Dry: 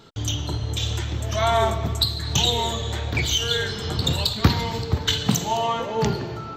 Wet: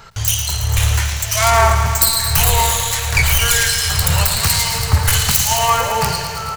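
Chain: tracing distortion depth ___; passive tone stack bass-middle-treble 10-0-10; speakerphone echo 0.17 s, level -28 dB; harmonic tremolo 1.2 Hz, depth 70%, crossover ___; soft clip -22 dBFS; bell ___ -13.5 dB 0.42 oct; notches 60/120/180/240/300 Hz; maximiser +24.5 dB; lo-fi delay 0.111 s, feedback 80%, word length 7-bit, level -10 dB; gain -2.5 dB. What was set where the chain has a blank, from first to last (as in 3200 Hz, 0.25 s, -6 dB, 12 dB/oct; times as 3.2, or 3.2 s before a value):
0.35 ms, 2400 Hz, 3500 Hz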